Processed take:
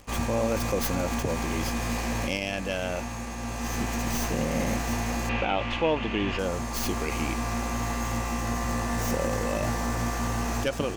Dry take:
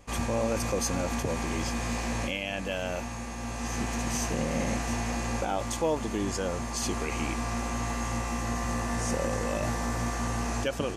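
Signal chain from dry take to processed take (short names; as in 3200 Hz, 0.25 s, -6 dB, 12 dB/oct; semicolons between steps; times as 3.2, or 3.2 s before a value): tracing distortion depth 0.17 ms; crackle 140/s -41 dBFS; 5.29–6.39 synth low-pass 2800 Hz, resonance Q 4; gain +2 dB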